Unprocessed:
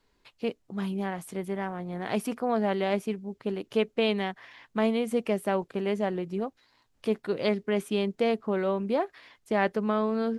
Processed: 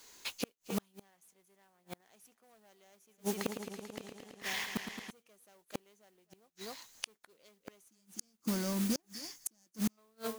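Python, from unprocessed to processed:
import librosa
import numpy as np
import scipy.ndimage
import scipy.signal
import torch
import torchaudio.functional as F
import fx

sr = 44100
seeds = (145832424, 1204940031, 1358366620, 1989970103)

y = fx.fade_out_tail(x, sr, length_s=0.53)
y = 10.0 ** (-24.0 / 20.0) * np.tanh(y / 10.0 ** (-24.0 / 20.0))
y = fx.peak_eq(y, sr, hz=6400.0, db=11.0, octaves=0.29)
y = fx.spec_box(y, sr, start_s=7.81, length_s=2.17, low_hz=350.0, high_hz=4400.0, gain_db=-18)
y = fx.riaa(y, sr, side='recording')
y = y + 10.0 ** (-19.5 / 20.0) * np.pad(y, (int(256 * sr / 1000.0), 0))[:len(y)]
y = fx.mod_noise(y, sr, seeds[0], snr_db=10)
y = fx.gate_flip(y, sr, shuts_db=-29.0, range_db=-41)
y = fx.echo_warbled(y, sr, ms=110, feedback_pct=80, rate_hz=2.8, cents=94, wet_db=-8, at=(2.98, 5.11))
y = y * 10.0 ** (9.0 / 20.0)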